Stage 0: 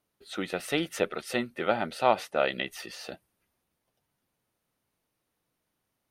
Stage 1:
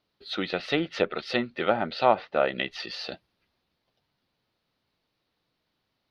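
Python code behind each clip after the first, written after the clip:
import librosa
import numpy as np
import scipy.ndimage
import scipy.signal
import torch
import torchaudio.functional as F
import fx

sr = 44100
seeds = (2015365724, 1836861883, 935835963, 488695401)

y = fx.env_lowpass_down(x, sr, base_hz=1700.0, full_db=-23.5)
y = fx.high_shelf_res(y, sr, hz=6000.0, db=-12.0, q=3.0)
y = y * 10.0 ** (2.5 / 20.0)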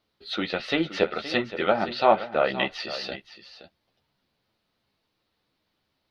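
y = fx.chorus_voices(x, sr, voices=4, hz=1.4, base_ms=12, depth_ms=3.0, mix_pct=35)
y = y + 10.0 ** (-13.5 / 20.0) * np.pad(y, (int(521 * sr / 1000.0), 0))[:len(y)]
y = y * 10.0 ** (4.5 / 20.0)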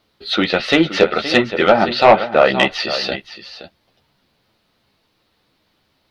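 y = fx.fold_sine(x, sr, drive_db=5, ceiling_db=-4.5)
y = y * 10.0 ** (3.0 / 20.0)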